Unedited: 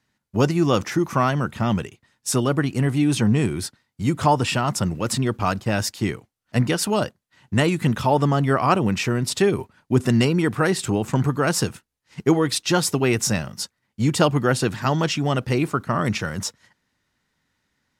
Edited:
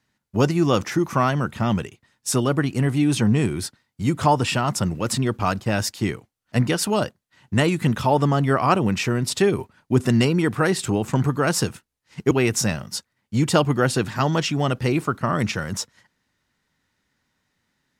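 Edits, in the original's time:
0:12.31–0:12.97: remove

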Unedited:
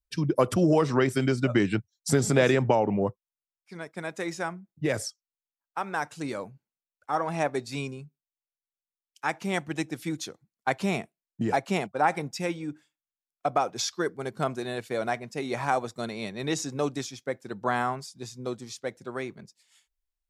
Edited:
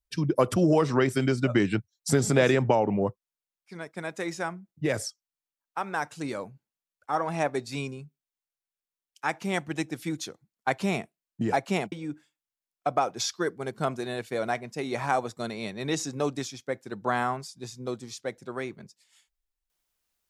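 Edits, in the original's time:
0:11.92–0:12.51: remove

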